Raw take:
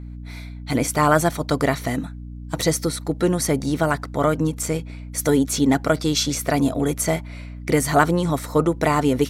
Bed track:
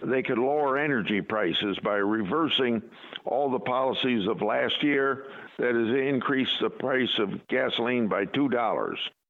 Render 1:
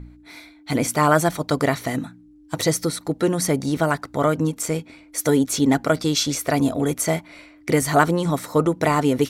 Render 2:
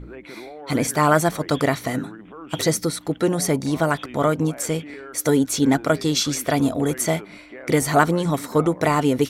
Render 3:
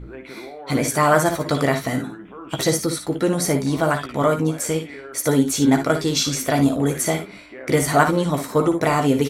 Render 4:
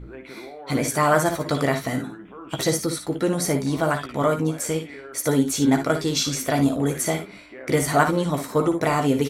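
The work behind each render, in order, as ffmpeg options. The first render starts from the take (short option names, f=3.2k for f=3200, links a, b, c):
-af "bandreject=f=60:t=h:w=4,bandreject=f=120:t=h:w=4,bandreject=f=180:t=h:w=4,bandreject=f=240:t=h:w=4"
-filter_complex "[1:a]volume=-14dB[a];[0:a][a]amix=inputs=2:normalize=0"
-filter_complex "[0:a]asplit=2[a][b];[b]adelay=15,volume=-8dB[c];[a][c]amix=inputs=2:normalize=0,aecho=1:1:57|69:0.355|0.178"
-af "volume=-2.5dB"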